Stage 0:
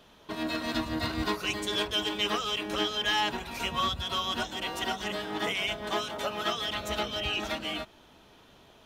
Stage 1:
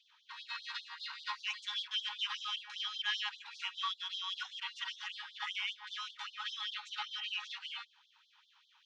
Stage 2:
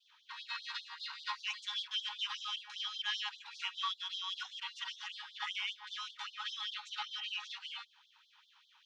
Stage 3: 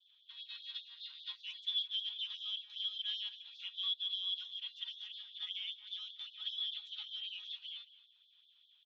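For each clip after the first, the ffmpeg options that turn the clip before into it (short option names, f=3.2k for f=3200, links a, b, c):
-af "lowpass=f=5.4k:w=0.5412,lowpass=f=5.4k:w=1.3066,afftfilt=real='re*gte(b*sr/1024,770*pow(3200/770,0.5+0.5*sin(2*PI*5.1*pts/sr)))':imag='im*gte(b*sr/1024,770*pow(3200/770,0.5+0.5*sin(2*PI*5.1*pts/sr)))':win_size=1024:overlap=0.75,volume=-6dB"
-af "adynamicequalizer=threshold=0.00282:dfrequency=1900:dqfactor=0.89:tfrequency=1900:tqfactor=0.89:attack=5:release=100:ratio=0.375:range=2.5:mode=cutabove:tftype=bell,volume=1.5dB"
-af "bandpass=f=3.4k:t=q:w=12:csg=0,aecho=1:1:219:0.141,volume=6dB"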